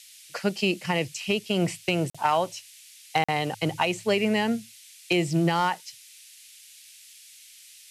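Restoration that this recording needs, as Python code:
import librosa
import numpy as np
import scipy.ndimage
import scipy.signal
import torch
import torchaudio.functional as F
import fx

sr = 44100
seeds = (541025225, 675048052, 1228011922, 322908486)

y = fx.fix_declip(x, sr, threshold_db=-13.5)
y = fx.fix_interpolate(y, sr, at_s=(2.1, 3.24), length_ms=45.0)
y = fx.noise_reduce(y, sr, print_start_s=7.38, print_end_s=7.88, reduce_db=21.0)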